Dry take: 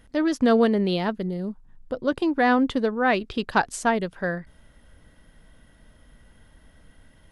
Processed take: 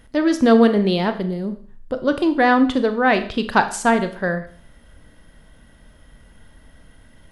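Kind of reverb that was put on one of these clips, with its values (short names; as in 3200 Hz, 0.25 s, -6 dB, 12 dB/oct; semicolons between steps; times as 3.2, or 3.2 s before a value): Schroeder reverb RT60 0.48 s, combs from 27 ms, DRR 9 dB; gain +4.5 dB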